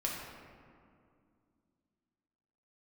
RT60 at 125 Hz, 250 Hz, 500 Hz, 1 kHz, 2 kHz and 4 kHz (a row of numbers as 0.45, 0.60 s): 3.0, 3.3, 2.4, 2.2, 1.7, 1.1 s